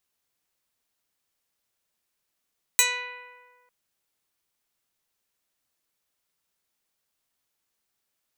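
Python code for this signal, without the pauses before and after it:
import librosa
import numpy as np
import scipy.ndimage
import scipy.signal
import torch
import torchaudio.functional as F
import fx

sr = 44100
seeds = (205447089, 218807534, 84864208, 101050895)

y = fx.pluck(sr, length_s=0.9, note=71, decay_s=1.71, pick=0.1, brightness='medium')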